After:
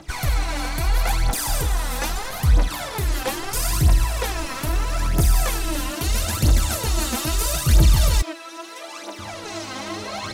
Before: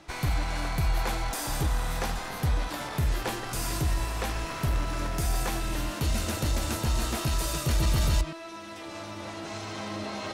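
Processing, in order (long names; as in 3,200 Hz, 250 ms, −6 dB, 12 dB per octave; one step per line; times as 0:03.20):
high-shelf EQ 5,400 Hz +6 dB
phase shifter 0.77 Hz, delay 4 ms, feedback 67%
0:08.22–0:09.19: high-pass filter 320 Hz 24 dB per octave
level +2.5 dB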